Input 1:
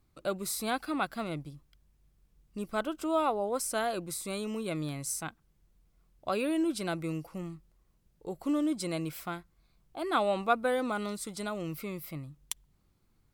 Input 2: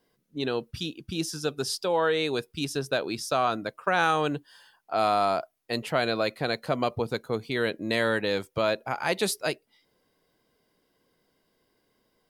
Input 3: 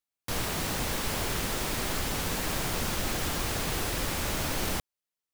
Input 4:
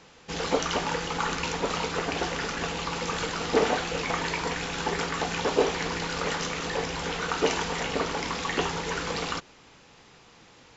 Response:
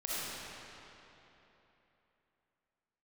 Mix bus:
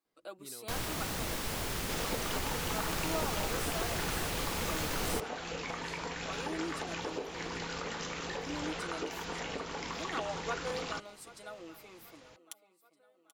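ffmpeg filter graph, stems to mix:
-filter_complex "[0:a]highpass=frequency=300:width=0.5412,highpass=frequency=300:width=1.3066,aecho=1:1:6.2:0.61,volume=-12dB,asplit=2[link_01][link_02];[link_02]volume=-18dB[link_03];[1:a]acompressor=threshold=-35dB:ratio=6,lowpass=6800,adelay=50,volume=-14.5dB[link_04];[2:a]adelay=400,volume=-5.5dB[link_05];[3:a]acompressor=threshold=-30dB:ratio=12,adelay=1600,volume=-5dB[link_06];[link_03]aecho=0:1:783|1566|2349|3132|3915|4698|5481:1|0.48|0.23|0.111|0.0531|0.0255|0.0122[link_07];[link_01][link_04][link_05][link_06][link_07]amix=inputs=5:normalize=0"

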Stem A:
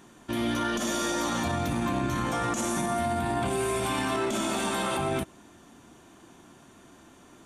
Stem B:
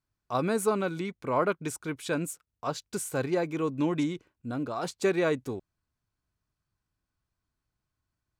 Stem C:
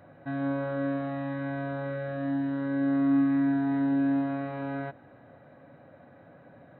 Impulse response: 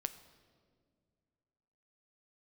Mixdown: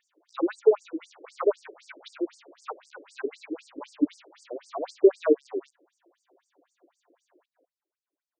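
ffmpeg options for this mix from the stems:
-filter_complex "[0:a]acompressor=threshold=-41dB:ratio=2,volume=-11dB[link_01];[1:a]highshelf=frequency=3600:gain=-11,volume=3dB,asplit=2[link_02][link_03];[2:a]aecho=1:1:4.2:0.47,adelay=850,volume=-10dB[link_04];[link_03]apad=whole_len=337373[link_05];[link_04][link_05]sidechaingate=range=-6dB:threshold=-48dB:ratio=16:detection=peak[link_06];[link_01][link_06]amix=inputs=2:normalize=0,aeval=exprs='(mod(89.1*val(0)+1,2)-1)/89.1':channel_layout=same,acompressor=threshold=-47dB:ratio=4,volume=0dB[link_07];[link_02][link_07]amix=inputs=2:normalize=0,equalizer=frequency=250:width=0.92:gain=14,afftfilt=real='re*between(b*sr/1024,410*pow(6600/410,0.5+0.5*sin(2*PI*3.9*pts/sr))/1.41,410*pow(6600/410,0.5+0.5*sin(2*PI*3.9*pts/sr))*1.41)':imag='im*between(b*sr/1024,410*pow(6600/410,0.5+0.5*sin(2*PI*3.9*pts/sr))/1.41,410*pow(6600/410,0.5+0.5*sin(2*PI*3.9*pts/sr))*1.41)':win_size=1024:overlap=0.75"

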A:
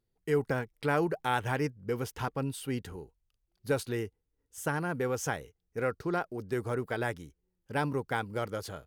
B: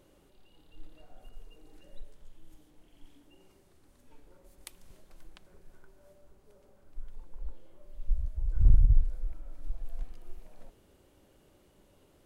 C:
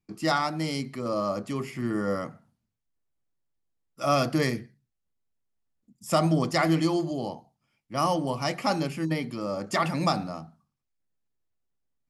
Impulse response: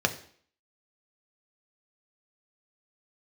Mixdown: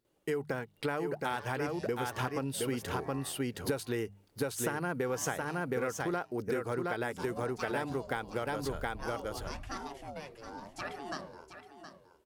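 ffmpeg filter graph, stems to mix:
-filter_complex "[0:a]dynaudnorm=framelen=600:gausssize=7:maxgain=7dB,volume=3dB,asplit=2[link_01][link_02];[link_02]volume=-4.5dB[link_03];[1:a]adelay=50,volume=-11dB,asplit=2[link_04][link_05];[link_05]volume=-3dB[link_06];[2:a]aeval=exprs='val(0)*sin(2*PI*400*n/s+400*0.45/0.91*sin(2*PI*0.91*n/s))':channel_layout=same,adelay=1050,volume=-11.5dB,asplit=2[link_07][link_08];[link_08]volume=-11dB[link_09];[link_03][link_06][link_09]amix=inputs=3:normalize=0,aecho=0:1:719:1[link_10];[link_01][link_04][link_07][link_10]amix=inputs=4:normalize=0,highpass=frequency=140:poles=1,bandreject=frequency=50:width_type=h:width=6,bandreject=frequency=100:width_type=h:width=6,bandreject=frequency=150:width_type=h:width=6,bandreject=frequency=200:width_type=h:width=6,acompressor=threshold=-30dB:ratio=10"

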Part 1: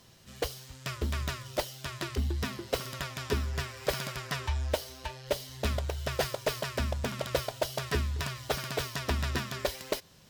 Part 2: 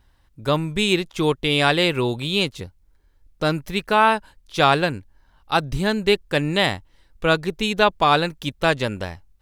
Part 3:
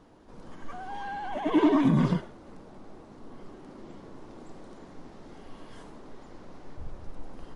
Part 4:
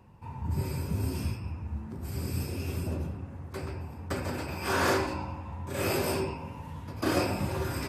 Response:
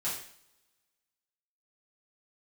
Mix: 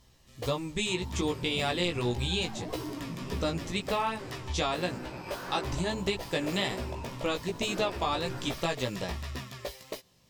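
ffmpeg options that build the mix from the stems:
-filter_complex "[0:a]volume=-3.5dB[link_01];[1:a]lowpass=frequency=7200:width_type=q:width=3.1,volume=-2.5dB[link_02];[2:a]adelay=1200,volume=-7.5dB[link_03];[3:a]highpass=120,adelay=650,volume=0.5dB[link_04];[link_01][link_02]amix=inputs=2:normalize=0,bandreject=frequency=1500:width=5.8,acompressor=threshold=-23dB:ratio=6,volume=0dB[link_05];[link_03][link_04]amix=inputs=2:normalize=0,lowpass=frequency=2800:poles=1,alimiter=level_in=5dB:limit=-24dB:level=0:latency=1:release=35,volume=-5dB,volume=0dB[link_06];[link_05][link_06]amix=inputs=2:normalize=0,flanger=delay=15.5:depth=2.1:speed=1.8"

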